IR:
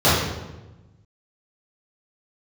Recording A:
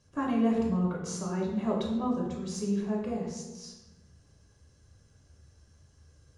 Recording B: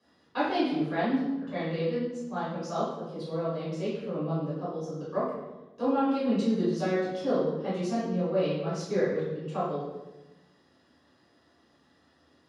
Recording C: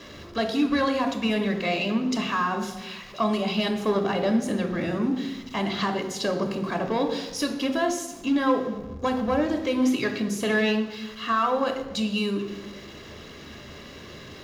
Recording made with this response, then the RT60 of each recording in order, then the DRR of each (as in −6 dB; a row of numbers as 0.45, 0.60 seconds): B; 1.1, 1.1, 1.1 seconds; −2.5, −12.0, 4.5 decibels